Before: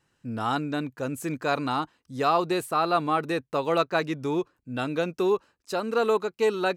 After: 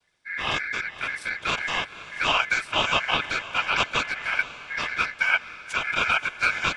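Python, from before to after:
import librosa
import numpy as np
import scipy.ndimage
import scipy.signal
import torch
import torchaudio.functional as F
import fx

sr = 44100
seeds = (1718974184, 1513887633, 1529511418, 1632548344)

y = fx.noise_vocoder(x, sr, seeds[0], bands=12)
y = y * np.sin(2.0 * np.pi * 1900.0 * np.arange(len(y)) / sr)
y = fx.echo_diffused(y, sr, ms=526, feedback_pct=48, wet_db=-14.5)
y = y * 10.0 ** (3.5 / 20.0)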